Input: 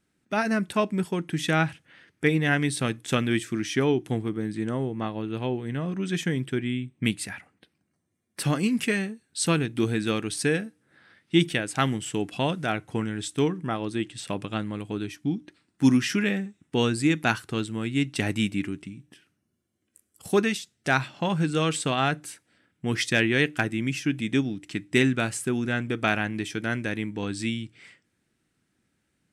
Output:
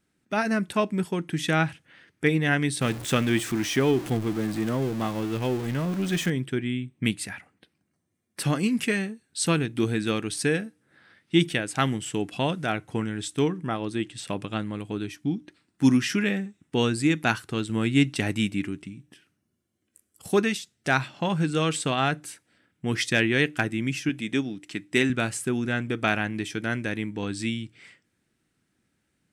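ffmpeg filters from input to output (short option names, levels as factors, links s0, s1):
-filter_complex "[0:a]asettb=1/sr,asplit=3[s0][s1][s2];[s0]atrim=end=2.814[s3];[s1]atrim=start=2.81:end=6.3,asetpts=PTS-STARTPTS,afade=t=in:d=0.004:c=qsin,afade=t=out:st=3.486:d=0.004:c=qsin,aeval=exprs='val(0)+0.5*0.0251*sgn(val(0))':c=same[s4];[s2]atrim=start=6.296[s5];[s3][s4]acrossfade=d=0.004:c1=hsin:c2=qsin[s6];[s6][s5]acrossfade=d=0.004:c1=qsin:c2=hsin,asettb=1/sr,asplit=3[s7][s8][s9];[s7]atrim=end=17.694[s10];[s8]atrim=start=17.69:end=18.15,asetpts=PTS-STARTPTS,afade=t=in:d=0.004:c=qsin,afade=t=out:st=0.456:d=0.004:c=qsin,acontrast=21[s11];[s9]atrim=start=18.146[s12];[s10][s11]acrossfade=d=0.004:c1=hsin:c2=qsin[s13];[s13][s12]acrossfade=d=0.004:c1=qsin:c2=hsin,asettb=1/sr,asplit=3[s14][s15][s16];[s14]atrim=end=24.094[s17];[s15]atrim=start=24.09:end=25.1,asetpts=PTS-STARTPTS,afade=t=in:d=0.004:c=qsin,afade=t=out:st=1.006:d=0.004:c=qsin,highpass=f=220:p=1[s18];[s16]atrim=start=25.096[s19];[s17][s18]acrossfade=d=0.004:c1=hsin:c2=qsin[s20];[s20][s19]acrossfade=d=0.004:c1=qsin:c2=hsin"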